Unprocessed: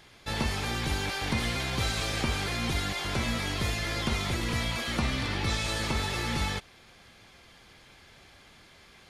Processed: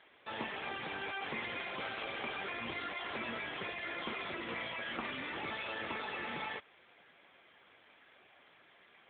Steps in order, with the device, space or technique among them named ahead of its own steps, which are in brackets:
telephone (band-pass filter 330–3,500 Hz; soft clipping −22.5 dBFS, distortion −25 dB; level −3 dB; AMR narrowband 7.95 kbit/s 8,000 Hz)

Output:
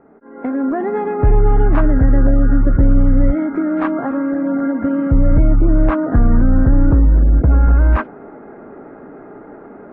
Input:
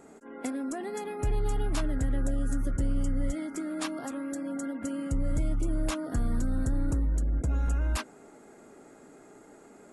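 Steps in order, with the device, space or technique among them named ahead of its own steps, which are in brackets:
action camera in a waterproof case (low-pass filter 1,700 Hz 24 dB per octave; automatic gain control gain up to 13 dB; level +3.5 dB; AAC 48 kbit/s 16,000 Hz)

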